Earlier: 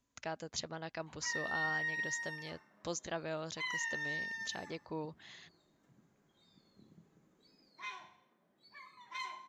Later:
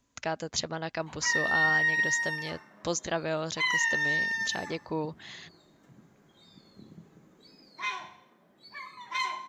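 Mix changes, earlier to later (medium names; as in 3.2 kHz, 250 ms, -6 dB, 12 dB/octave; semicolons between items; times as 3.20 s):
speech +9.0 dB; background +11.5 dB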